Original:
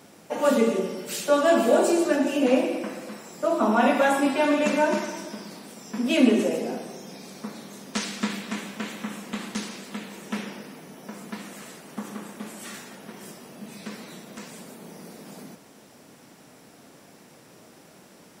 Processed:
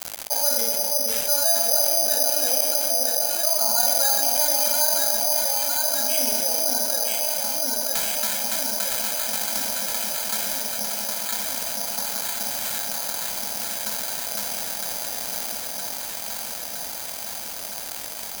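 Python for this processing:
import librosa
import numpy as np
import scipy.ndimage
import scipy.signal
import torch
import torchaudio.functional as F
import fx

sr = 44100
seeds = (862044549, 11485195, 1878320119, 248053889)

p1 = scipy.signal.sosfilt(scipy.signal.butter(2, 590.0, 'highpass', fs=sr, output='sos'), x)
p2 = fx.peak_eq(p1, sr, hz=6200.0, db=-11.5, octaves=2.9)
p3 = p2 + 0.85 * np.pad(p2, (int(1.3 * sr / 1000.0), 0))[:len(p2)]
p4 = np.sign(p3) * np.maximum(np.abs(p3) - 10.0 ** (-52.0 / 20.0), 0.0)
p5 = p4 + fx.echo_alternate(p4, sr, ms=482, hz=840.0, feedback_pct=75, wet_db=-4.5, dry=0)
p6 = (np.kron(p5[::8], np.eye(8)[0]) * 8)[:len(p5)]
p7 = fx.env_flatten(p6, sr, amount_pct=70)
y = F.gain(torch.from_numpy(p7), -12.0).numpy()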